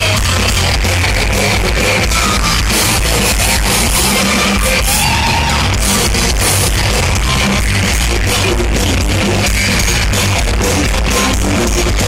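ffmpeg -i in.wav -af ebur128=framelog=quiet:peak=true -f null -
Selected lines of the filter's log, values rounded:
Integrated loudness:
  I:         -11.6 LUFS
  Threshold: -21.6 LUFS
Loudness range:
  LRA:         1.6 LU
  Threshold: -31.5 LUFS
  LRA low:   -12.4 LUFS
  LRA high:  -10.7 LUFS
True peak:
  Peak:       -1.6 dBFS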